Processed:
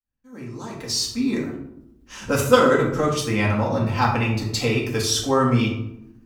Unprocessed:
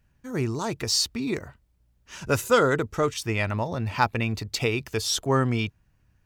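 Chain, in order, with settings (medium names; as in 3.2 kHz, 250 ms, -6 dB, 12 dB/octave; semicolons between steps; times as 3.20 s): fade-in on the opening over 1.73 s; in parallel at +2 dB: level held to a coarse grid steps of 16 dB; on the sum: reverberation RT60 0.85 s, pre-delay 4 ms, DRR -4 dB; trim -5 dB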